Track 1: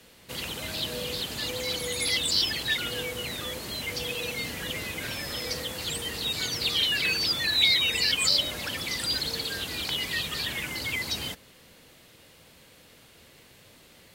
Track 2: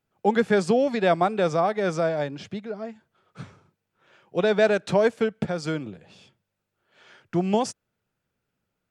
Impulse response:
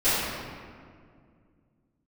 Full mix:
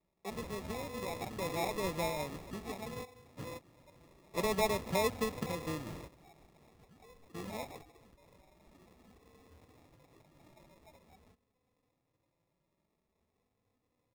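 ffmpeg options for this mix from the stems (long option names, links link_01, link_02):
-filter_complex "[0:a]alimiter=limit=-20.5dB:level=0:latency=1:release=389,asplit=2[link_01][link_02];[link_02]adelay=2.9,afreqshift=0.47[link_03];[link_01][link_03]amix=inputs=2:normalize=1,volume=-4dB[link_04];[1:a]crystalizer=i=3:c=0,volume=-11dB,afade=type=in:start_time=1.21:duration=0.55:silence=0.298538,afade=type=out:start_time=5.97:duration=0.26:silence=0.266073,asplit=2[link_05][link_06];[link_06]apad=whole_len=624122[link_07];[link_04][link_07]sidechaingate=range=-16dB:threshold=-60dB:ratio=16:detection=peak[link_08];[link_08][link_05]amix=inputs=2:normalize=0,lowpass=frequency=1300:poles=1,acrusher=samples=29:mix=1:aa=0.000001"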